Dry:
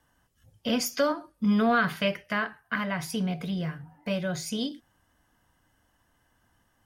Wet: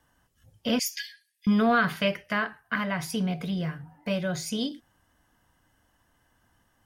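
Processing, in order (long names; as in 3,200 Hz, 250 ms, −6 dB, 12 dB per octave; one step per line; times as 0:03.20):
0:00.79–0:01.47: linear-phase brick-wall high-pass 1,600 Hz
level +1 dB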